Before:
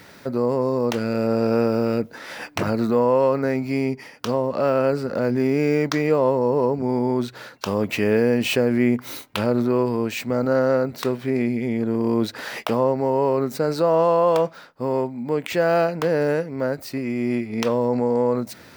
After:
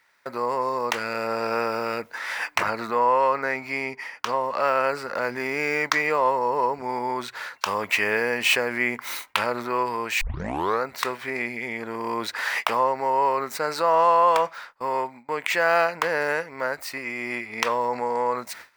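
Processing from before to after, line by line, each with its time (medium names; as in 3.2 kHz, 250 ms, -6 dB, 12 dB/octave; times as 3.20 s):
2.63–4.41 s: treble shelf 5.8 kHz -6 dB
10.21 s: tape start 0.62 s
whole clip: graphic EQ 125/250/1000/2000/8000 Hz -8/-6/+11/+10/+3 dB; gate with hold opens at -25 dBFS; treble shelf 2 kHz +8.5 dB; trim -8 dB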